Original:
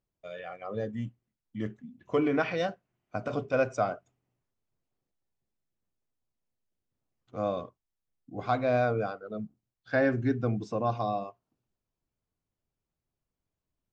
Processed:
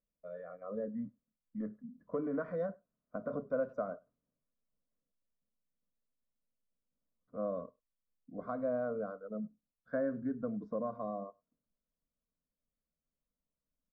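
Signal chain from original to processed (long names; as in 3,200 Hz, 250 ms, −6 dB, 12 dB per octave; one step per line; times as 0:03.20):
low-pass filter 1,000 Hz 12 dB per octave
downward compressor 3 to 1, threshold −28 dBFS, peak gain reduction 5.5 dB
phaser with its sweep stopped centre 540 Hz, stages 8
far-end echo of a speakerphone 100 ms, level −28 dB
level −2 dB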